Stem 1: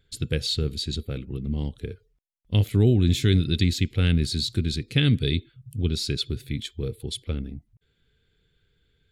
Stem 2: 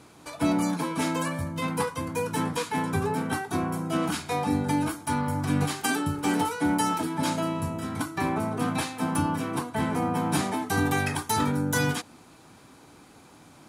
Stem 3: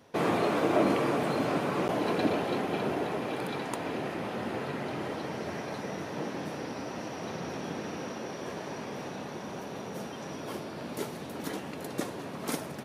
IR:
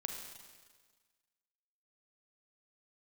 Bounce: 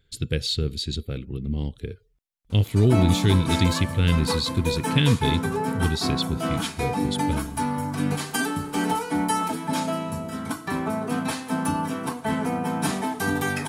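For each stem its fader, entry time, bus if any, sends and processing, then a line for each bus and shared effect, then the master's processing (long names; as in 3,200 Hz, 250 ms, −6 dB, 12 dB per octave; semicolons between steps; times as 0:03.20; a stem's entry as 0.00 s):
+0.5 dB, 0.00 s, no send, no processing
−2.5 dB, 2.50 s, send −7.5 dB, comb filter 4.5 ms, depth 44%
muted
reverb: on, RT60 1.5 s, pre-delay 34 ms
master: no processing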